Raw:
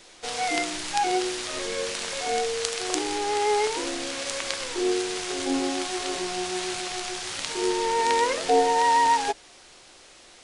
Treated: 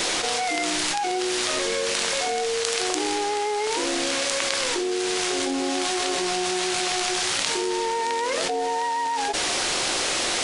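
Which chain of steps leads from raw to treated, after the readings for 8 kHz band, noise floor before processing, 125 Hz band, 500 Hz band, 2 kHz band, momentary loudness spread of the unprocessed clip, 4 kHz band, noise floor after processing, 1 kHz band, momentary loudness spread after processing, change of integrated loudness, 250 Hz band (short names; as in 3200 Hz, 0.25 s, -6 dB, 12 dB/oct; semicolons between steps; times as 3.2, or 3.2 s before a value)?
+5.5 dB, -51 dBFS, +3.0 dB, +0.5 dB, +4.0 dB, 9 LU, +5.5 dB, -26 dBFS, -1.5 dB, 2 LU, +2.0 dB, +1.5 dB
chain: low shelf 95 Hz -9.5 dB; fast leveller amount 100%; gain -7.5 dB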